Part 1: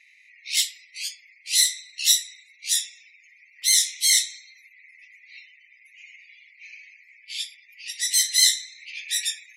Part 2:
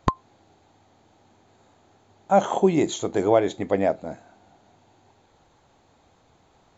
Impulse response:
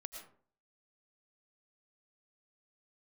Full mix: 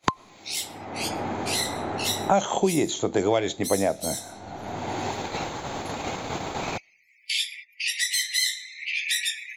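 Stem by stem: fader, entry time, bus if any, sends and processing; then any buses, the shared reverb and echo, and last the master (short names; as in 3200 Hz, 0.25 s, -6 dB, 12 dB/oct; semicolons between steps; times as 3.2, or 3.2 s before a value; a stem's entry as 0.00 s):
-4.0 dB, 0.00 s, send -19 dB, differentiator; auto duck -12 dB, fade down 1.85 s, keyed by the second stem
+1.5 dB, 0.00 s, send -19.5 dB, dry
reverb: on, RT60 0.50 s, pre-delay 70 ms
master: gate -57 dBFS, range -20 dB; three-band squash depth 100%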